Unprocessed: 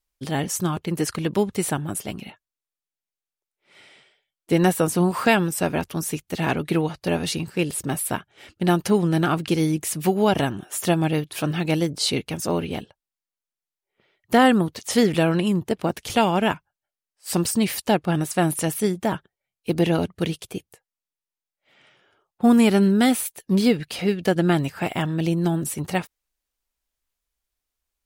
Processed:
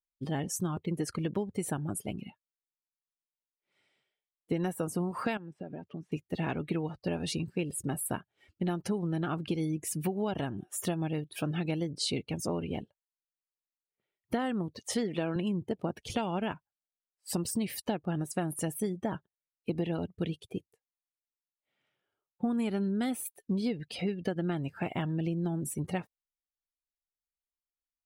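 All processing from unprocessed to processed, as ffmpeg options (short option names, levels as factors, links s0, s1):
-filter_complex "[0:a]asettb=1/sr,asplit=3[s0][s1][s2];[s0]atrim=end=5.374[s3];[s1]atrim=start=5.37:end=6.12,asetpts=PTS-STARTPTS,afade=t=in:d=0.004:c=qsin,afade=t=out:st=0.746:d=0.004:c=qsin,acompressor=threshold=0.0316:ratio=12:attack=3.2:release=140:knee=1:detection=peak,highpass=110,lowpass=3000[s4];[s2]atrim=start=6.116[s5];[s3][s4]acrossfade=d=0.004:c1=hsin:c2=qsin[s6];[s6][s5]acrossfade=d=0.004:c1=qsin:c2=hsin,asettb=1/sr,asplit=3[s7][s8][s9];[s7]atrim=end=14.944[s10];[s8]atrim=start=14.94:end=15.36,asetpts=PTS-STARTPTS,afade=t=in:d=0.004:c=qsin,afade=t=out:st=0.416:d=0.004:c=qsin,highpass=180,highshelf=f=8800:g=-6.5[s11];[s9]atrim=start=15.356[s12];[s10][s11]acrossfade=d=0.004:c1=hsin:c2=qsin[s13];[s13][s12]acrossfade=d=0.004:c1=qsin:c2=hsin,afftdn=nr=17:nf=-36,lowshelf=f=470:g=3.5,acompressor=threshold=0.0891:ratio=6,volume=0.447"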